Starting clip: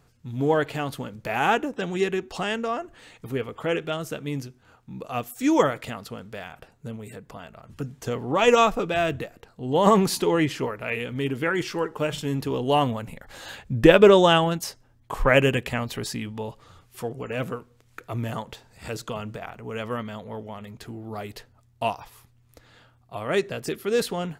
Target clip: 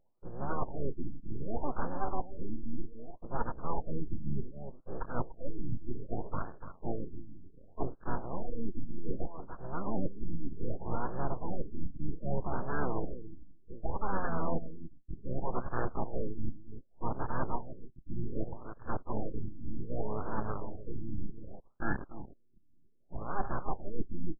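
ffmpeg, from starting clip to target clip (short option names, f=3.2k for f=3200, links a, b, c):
-filter_complex "[0:a]highpass=100,afwtdn=0.0316,lowshelf=f=170:g=-11,areverse,acompressor=threshold=-36dB:ratio=12,areverse,aeval=exprs='abs(val(0))':c=same,asplit=4[a][b][c][d];[b]asetrate=22050,aresample=44100,atempo=2,volume=-7dB[e];[c]asetrate=58866,aresample=44100,atempo=0.749154,volume=-8dB[f];[d]asetrate=66075,aresample=44100,atempo=0.66742,volume=-9dB[g];[a][e][f][g]amix=inputs=4:normalize=0,aecho=1:1:292:0.282,afftfilt=real='re*lt(b*sr/1024,340*pow(1800/340,0.5+0.5*sin(2*PI*0.65*pts/sr)))':imag='im*lt(b*sr/1024,340*pow(1800/340,0.5+0.5*sin(2*PI*0.65*pts/sr)))':win_size=1024:overlap=0.75,volume=7.5dB"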